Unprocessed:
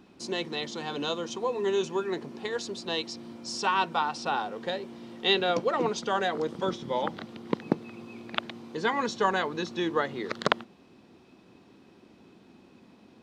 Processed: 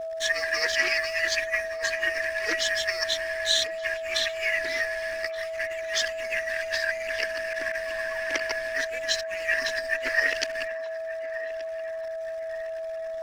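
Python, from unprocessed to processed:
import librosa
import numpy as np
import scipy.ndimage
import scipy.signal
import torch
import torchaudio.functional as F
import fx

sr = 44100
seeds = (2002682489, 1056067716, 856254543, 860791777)

p1 = fx.band_shuffle(x, sr, order='2143')
p2 = scipy.signal.sosfilt(scipy.signal.cheby1(5, 1.0, 270.0, 'highpass', fs=sr, output='sos'), p1)
p3 = fx.peak_eq(p2, sr, hz=3200.0, db=7.5, octaves=2.4)
p4 = fx.over_compress(p3, sr, threshold_db=-29.0, ratio=-0.5)
p5 = fx.dmg_noise_colour(p4, sr, seeds[0], colour='pink', level_db=-55.0)
p6 = np.sign(p5) * np.maximum(np.abs(p5) - 10.0 ** (-41.5 / 20.0), 0.0)
p7 = fx.chorus_voices(p6, sr, voices=6, hz=0.5, base_ms=13, depth_ms=2.4, mix_pct=70)
p8 = p7 + fx.echo_banded(p7, sr, ms=1177, feedback_pct=63, hz=930.0, wet_db=-11.5, dry=0)
p9 = p8 + 10.0 ** (-35.0 / 20.0) * np.sin(2.0 * np.pi * 650.0 * np.arange(len(p8)) / sr)
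p10 = fx.doppler_dist(p9, sr, depth_ms=0.16)
y = p10 * librosa.db_to_amplitude(4.5)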